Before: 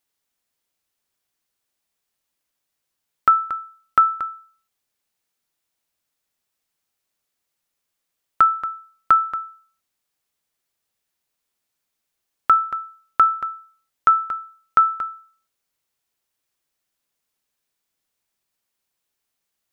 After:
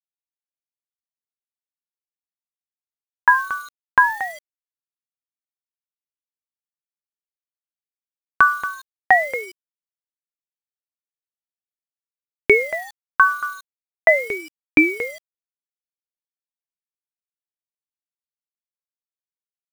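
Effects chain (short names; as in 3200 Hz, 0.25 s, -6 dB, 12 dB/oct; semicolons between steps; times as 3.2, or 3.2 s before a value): bit-crush 7-bit; ring modulator with a swept carrier 600 Hz, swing 75%, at 0.41 Hz; gain +4 dB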